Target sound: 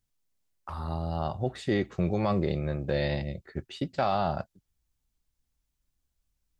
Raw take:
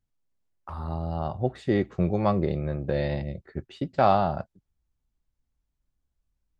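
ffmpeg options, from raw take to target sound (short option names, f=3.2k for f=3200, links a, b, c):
-af "highshelf=f=2.3k:g=9.5,alimiter=limit=-14.5dB:level=0:latency=1:release=19,volume=-1.5dB"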